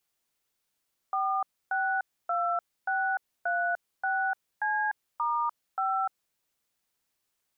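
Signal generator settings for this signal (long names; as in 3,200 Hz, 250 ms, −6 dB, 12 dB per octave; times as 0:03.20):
touch tones "462636C*5", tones 298 ms, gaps 283 ms, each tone −28 dBFS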